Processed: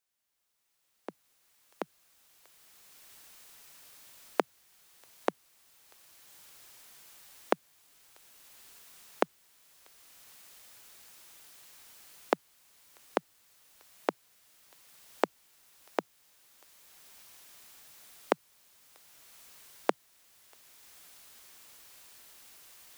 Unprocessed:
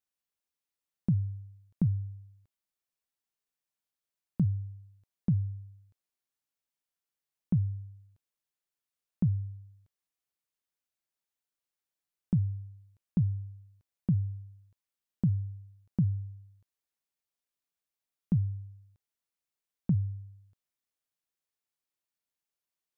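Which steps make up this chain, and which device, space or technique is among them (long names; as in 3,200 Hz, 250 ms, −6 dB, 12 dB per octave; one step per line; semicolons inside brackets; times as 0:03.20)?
Bessel high-pass filter 670 Hz, order 8
cheap recorder with automatic gain (white noise bed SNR 21 dB; camcorder AGC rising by 11 dB per second)
level +3.5 dB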